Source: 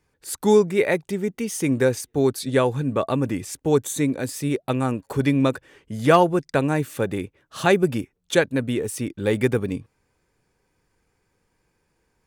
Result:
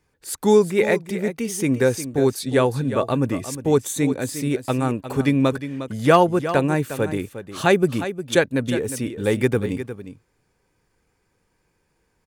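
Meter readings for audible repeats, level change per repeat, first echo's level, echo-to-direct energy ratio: 1, no regular repeats, -11.5 dB, -11.5 dB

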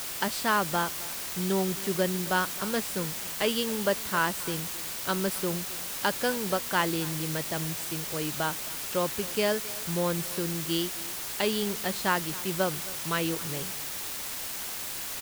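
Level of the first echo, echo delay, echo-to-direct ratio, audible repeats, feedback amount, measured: -19.0 dB, 267 ms, -19.0 dB, 1, no regular repeats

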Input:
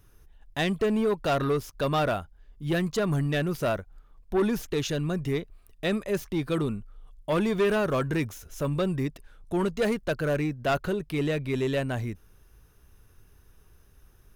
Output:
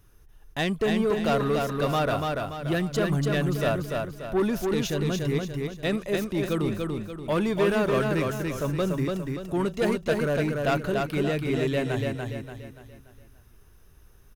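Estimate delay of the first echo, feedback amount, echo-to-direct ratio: 289 ms, 42%, -2.5 dB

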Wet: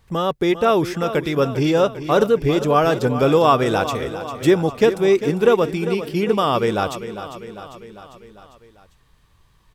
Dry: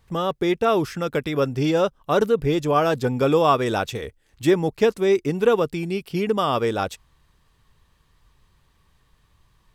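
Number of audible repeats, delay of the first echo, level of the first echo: 5, 399 ms, -12.0 dB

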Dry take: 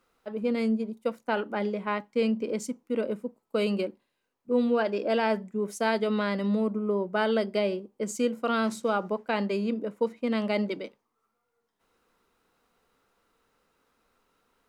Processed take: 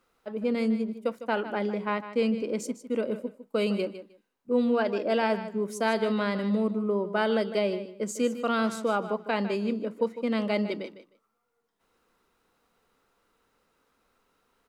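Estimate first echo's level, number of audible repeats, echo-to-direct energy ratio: -12.5 dB, 2, -12.5 dB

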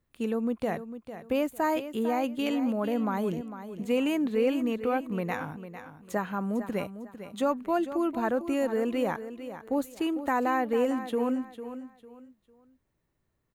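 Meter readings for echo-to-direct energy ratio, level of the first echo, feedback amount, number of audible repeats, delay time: -11.0 dB, -11.5 dB, 29%, 3, 451 ms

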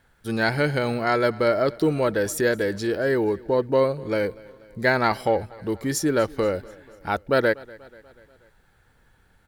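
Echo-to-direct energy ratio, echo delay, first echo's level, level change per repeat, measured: -21.0 dB, 242 ms, -22.5 dB, -5.0 dB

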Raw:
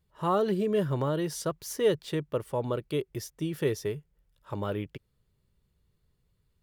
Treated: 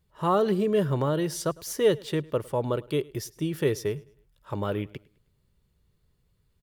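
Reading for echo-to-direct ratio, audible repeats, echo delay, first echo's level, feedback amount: -23.0 dB, 2, 105 ms, -23.5 dB, 39%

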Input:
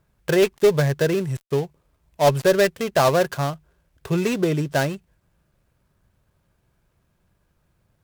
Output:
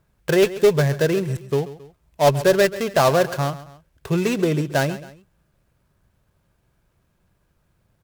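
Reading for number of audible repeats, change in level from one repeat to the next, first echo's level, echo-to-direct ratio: 2, -7.0 dB, -16.0 dB, -15.0 dB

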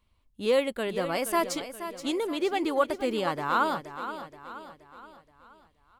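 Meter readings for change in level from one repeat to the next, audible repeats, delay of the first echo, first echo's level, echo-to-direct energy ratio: -6.5 dB, 4, 475 ms, -11.0 dB, -10.0 dB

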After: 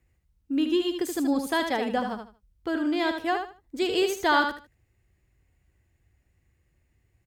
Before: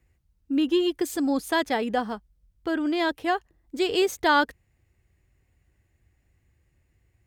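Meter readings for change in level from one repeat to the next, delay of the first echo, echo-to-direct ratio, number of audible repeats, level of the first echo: -13.0 dB, 77 ms, -6.5 dB, 3, -6.5 dB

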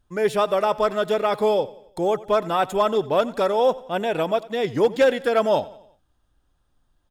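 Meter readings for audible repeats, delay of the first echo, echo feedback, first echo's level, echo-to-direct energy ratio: 3, 90 ms, 48%, -19.5 dB, -18.5 dB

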